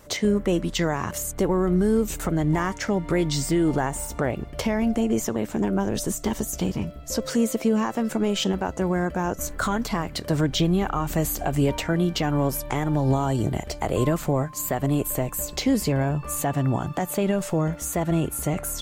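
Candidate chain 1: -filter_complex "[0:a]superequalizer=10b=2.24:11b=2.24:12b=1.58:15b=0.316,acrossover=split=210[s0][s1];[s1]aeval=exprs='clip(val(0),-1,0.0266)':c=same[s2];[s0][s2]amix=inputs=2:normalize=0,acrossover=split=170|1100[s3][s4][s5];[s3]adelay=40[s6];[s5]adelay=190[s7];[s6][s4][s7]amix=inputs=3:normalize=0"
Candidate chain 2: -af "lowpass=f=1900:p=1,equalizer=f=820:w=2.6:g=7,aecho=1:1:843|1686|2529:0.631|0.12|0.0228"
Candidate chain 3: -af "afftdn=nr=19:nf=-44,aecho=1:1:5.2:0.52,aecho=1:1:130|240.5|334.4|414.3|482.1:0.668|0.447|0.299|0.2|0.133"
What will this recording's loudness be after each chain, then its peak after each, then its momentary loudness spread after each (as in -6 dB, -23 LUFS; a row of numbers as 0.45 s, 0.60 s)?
-27.5 LUFS, -23.0 LUFS, -20.5 LUFS; -11.5 dBFS, -7.5 dBFS, -6.0 dBFS; 5 LU, 5 LU, 5 LU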